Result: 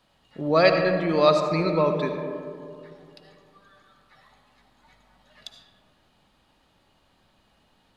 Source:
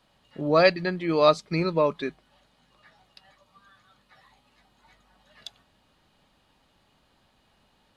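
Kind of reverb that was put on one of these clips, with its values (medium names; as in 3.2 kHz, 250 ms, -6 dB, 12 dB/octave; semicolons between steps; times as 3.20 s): algorithmic reverb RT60 2.4 s, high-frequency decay 0.3×, pre-delay 35 ms, DRR 4.5 dB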